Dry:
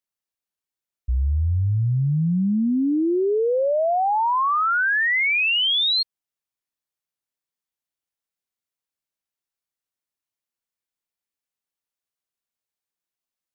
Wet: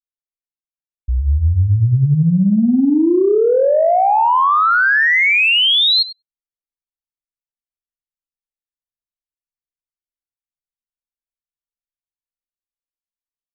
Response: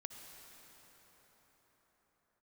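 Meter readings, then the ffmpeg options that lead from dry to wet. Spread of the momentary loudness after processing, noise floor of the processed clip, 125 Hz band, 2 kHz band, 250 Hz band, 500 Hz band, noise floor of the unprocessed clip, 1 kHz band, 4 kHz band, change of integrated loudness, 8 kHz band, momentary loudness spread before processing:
6 LU, under -85 dBFS, +7.0 dB, +7.0 dB, +7.5 dB, +7.5 dB, under -85 dBFS, +7.5 dB, +7.0 dB, +7.0 dB, n/a, 6 LU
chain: -filter_complex "[0:a]asplit=2[a][b];[b]adelay=99,lowpass=f=1.5k:p=1,volume=-7dB,asplit=2[c][d];[d]adelay=99,lowpass=f=1.5k:p=1,volume=0.35,asplit=2[e][f];[f]adelay=99,lowpass=f=1.5k:p=1,volume=0.35,asplit=2[g][h];[h]adelay=99,lowpass=f=1.5k:p=1,volume=0.35[i];[a][c][e][g][i]amix=inputs=5:normalize=0,acontrast=39,anlmdn=25.1,dynaudnorm=f=110:g=21:m=6dB,volume=-3.5dB"

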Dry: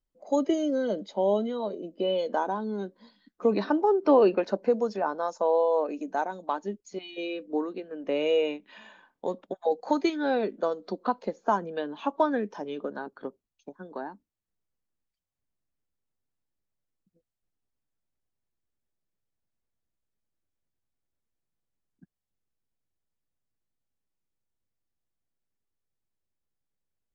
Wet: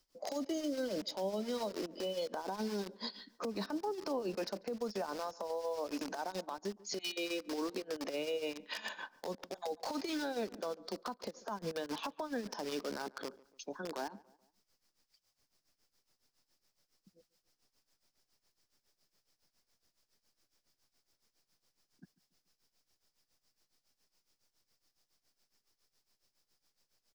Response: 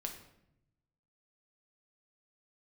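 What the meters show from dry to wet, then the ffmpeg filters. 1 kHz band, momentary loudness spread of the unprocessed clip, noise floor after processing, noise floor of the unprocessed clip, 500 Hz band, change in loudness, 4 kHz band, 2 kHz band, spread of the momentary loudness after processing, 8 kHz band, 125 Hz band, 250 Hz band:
-12.5 dB, 14 LU, under -85 dBFS, under -85 dBFS, -12.5 dB, -11.5 dB, -1.0 dB, -6.0 dB, 7 LU, n/a, -7.5 dB, -10.5 dB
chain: -filter_complex "[0:a]tremolo=f=7.2:d=0.82,asplit=2[a][b];[b]acrusher=bits=6:mix=0:aa=0.000001,volume=-4.5dB[c];[a][c]amix=inputs=2:normalize=0,equalizer=f=5.1k:t=o:w=0.53:g=12.5,acrossover=split=180[d][e];[e]acompressor=threshold=-36dB:ratio=6[f];[d][f]amix=inputs=2:normalize=0,lowshelf=f=240:g=-11,acompressor=threshold=-47dB:ratio=6,alimiter=level_in=19.5dB:limit=-24dB:level=0:latency=1:release=63,volume=-19.5dB,asplit=2[g][h];[h]adelay=143,lowpass=f=1.8k:p=1,volume=-21dB,asplit=2[i][j];[j]adelay=143,lowpass=f=1.8k:p=1,volume=0.46,asplit=2[k][l];[l]adelay=143,lowpass=f=1.8k:p=1,volume=0.46[m];[g][i][k][m]amix=inputs=4:normalize=0,volume=15dB"

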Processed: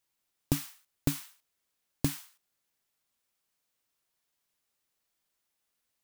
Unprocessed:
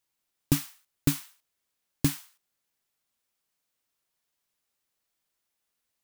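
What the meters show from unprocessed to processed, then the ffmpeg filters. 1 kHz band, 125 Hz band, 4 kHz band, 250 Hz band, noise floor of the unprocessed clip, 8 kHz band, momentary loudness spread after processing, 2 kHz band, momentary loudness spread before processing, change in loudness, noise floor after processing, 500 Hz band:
-2.0 dB, -4.5 dB, -4.5 dB, -4.5 dB, -82 dBFS, -4.5 dB, 12 LU, -4.5 dB, 10 LU, -5.0 dB, -82 dBFS, -1.5 dB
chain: -af "acompressor=threshold=-23dB:ratio=6"

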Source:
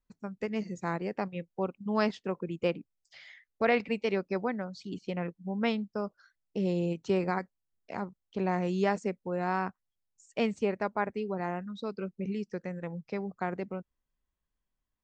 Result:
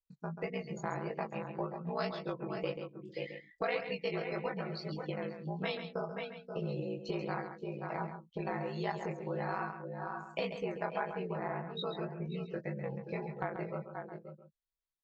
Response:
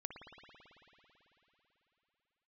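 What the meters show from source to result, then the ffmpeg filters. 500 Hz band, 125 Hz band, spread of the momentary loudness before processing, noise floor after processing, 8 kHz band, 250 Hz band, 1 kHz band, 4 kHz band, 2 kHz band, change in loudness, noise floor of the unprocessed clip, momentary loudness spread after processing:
-5.0 dB, -3.0 dB, 10 LU, -75 dBFS, n/a, -8.0 dB, -4.5 dB, -1.5 dB, -4.5 dB, -6.0 dB, -85 dBFS, 6 LU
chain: -filter_complex "[0:a]aeval=exprs='val(0)*sin(2*PI*30*n/s)':c=same,flanger=delay=19.5:depth=5.1:speed=1.8,aecho=1:1:6.1:0.49,asplit=2[a][b];[b]aecho=0:1:529:0.282[c];[a][c]amix=inputs=2:normalize=0,afftdn=nr=18:nf=-52,acompressor=threshold=-40dB:ratio=4,equalizer=f=100:t=o:w=0.67:g=-8,equalizer=f=250:t=o:w=0.67:g=-10,equalizer=f=4k:t=o:w=0.67:g=10,acontrast=78,asplit=2[d][e];[e]aecho=0:1:136:0.355[f];[d][f]amix=inputs=2:normalize=0,adynamicequalizer=threshold=0.00224:dfrequency=1900:dqfactor=0.7:tfrequency=1900:tqfactor=0.7:attack=5:release=100:ratio=0.375:range=2:mode=cutabove:tftype=highshelf,volume=1dB"

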